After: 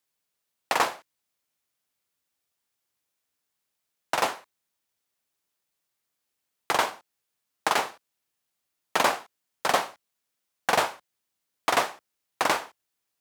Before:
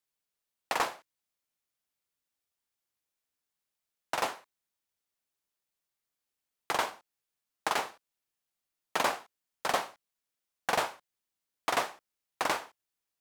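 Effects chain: high-pass 59 Hz; trim +6 dB

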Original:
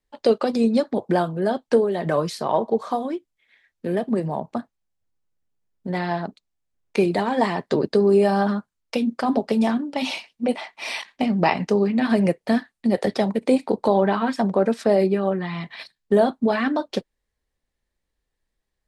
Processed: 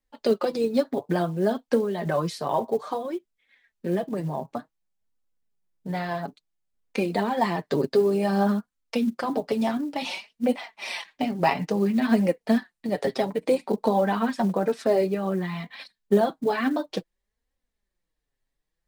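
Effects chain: flange 0.57 Hz, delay 3.6 ms, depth 4.1 ms, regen +13%; short-mantissa float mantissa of 4-bit

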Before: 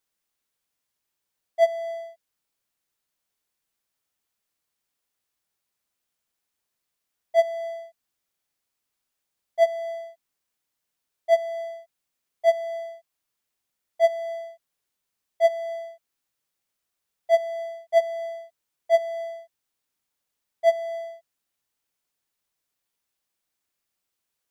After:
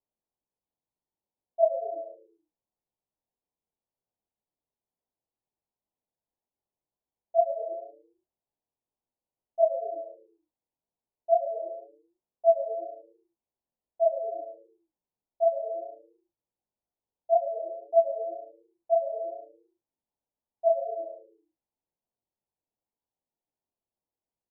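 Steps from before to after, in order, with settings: chorus 2 Hz, delay 16.5 ms, depth 7.8 ms; steep low-pass 970 Hz 48 dB/octave; frequency-shifting echo 110 ms, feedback 36%, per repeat -110 Hz, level -15.5 dB

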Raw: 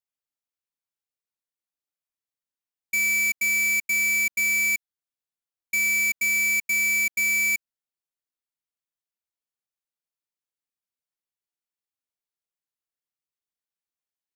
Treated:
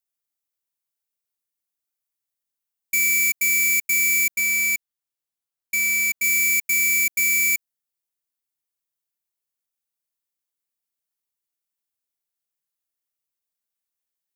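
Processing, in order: treble shelf 7.4 kHz +11 dB, from 4.34 s +6 dB, from 6.24 s +10.5 dB

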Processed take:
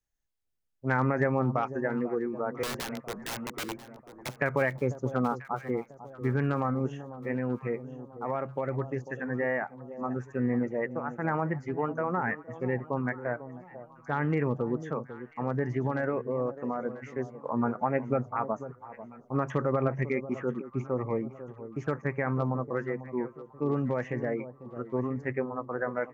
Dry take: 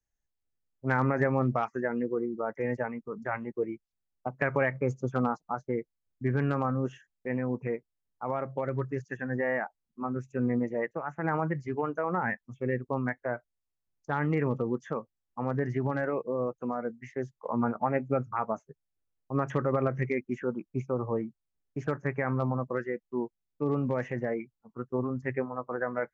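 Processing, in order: 2.63–4.29 s: integer overflow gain 29 dB; echo whose repeats swap between lows and highs 495 ms, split 940 Hz, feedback 62%, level -12.5 dB

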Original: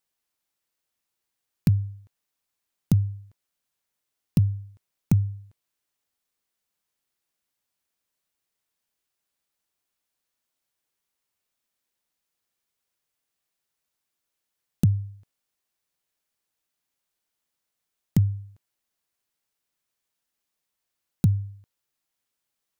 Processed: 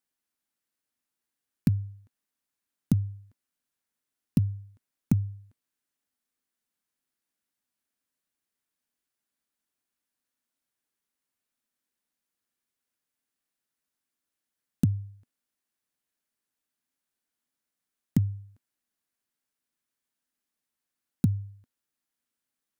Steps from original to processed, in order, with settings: fifteen-band graphic EQ 250 Hz +10 dB, 1.6 kHz +4 dB, 10 kHz +3 dB; trim -6 dB

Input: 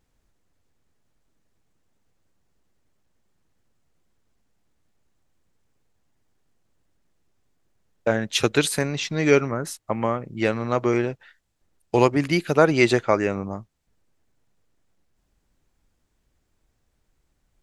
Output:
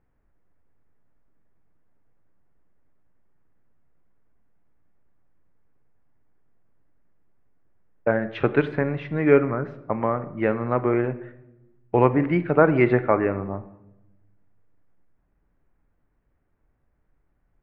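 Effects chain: low-pass 2 kHz 24 dB/octave; simulated room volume 340 m³, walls mixed, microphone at 0.3 m

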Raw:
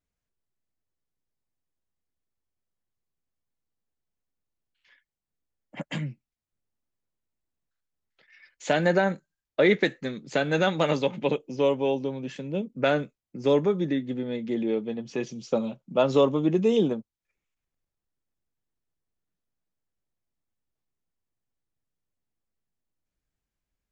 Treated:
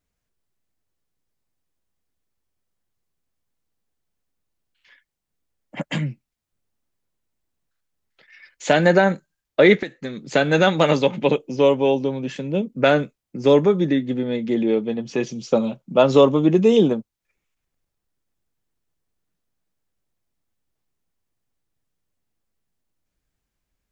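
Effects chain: 9.75–10.28 s: compression 16:1, threshold -32 dBFS, peak gain reduction 15 dB; trim +7 dB

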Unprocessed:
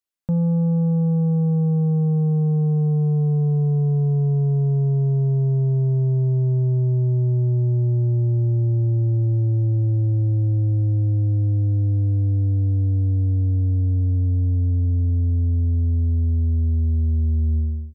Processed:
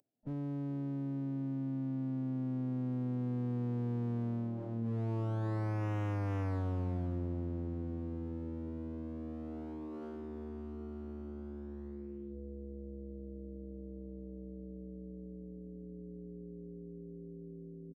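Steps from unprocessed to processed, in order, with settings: Doppler pass-by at 6.36 s, 30 m/s, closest 18 m; Chebyshev band-pass 130–750 Hz, order 5; peaking EQ 510 Hz -12.5 dB 1.6 oct; hum notches 50/100/150/200 Hz; one-sided clip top -55 dBFS, bottom -34 dBFS; formant-preserving pitch shift -4.5 st; on a send: frequency-shifting echo 417 ms, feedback 37%, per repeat +71 Hz, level -21 dB; on the sum: level flattener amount 50%; trim +5 dB

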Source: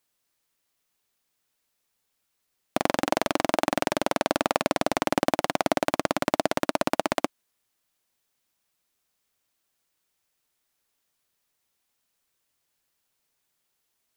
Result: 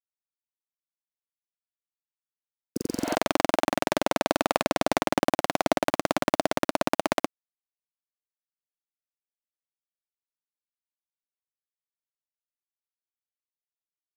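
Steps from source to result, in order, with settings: spectral replace 2.48–3.12 s, 510–4500 Hz both; small samples zeroed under -41.5 dBFS

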